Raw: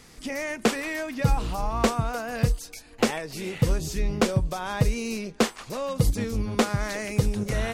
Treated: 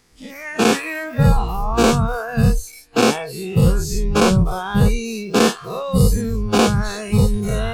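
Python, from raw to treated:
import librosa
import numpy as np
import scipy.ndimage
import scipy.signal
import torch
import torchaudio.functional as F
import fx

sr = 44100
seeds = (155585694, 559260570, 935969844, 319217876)

y = fx.spec_dilate(x, sr, span_ms=120)
y = fx.quant_dither(y, sr, seeds[0], bits=10, dither='none', at=(5.11, 5.51))
y = fx.noise_reduce_blind(y, sr, reduce_db=14)
y = y * librosa.db_to_amplitude(2.5)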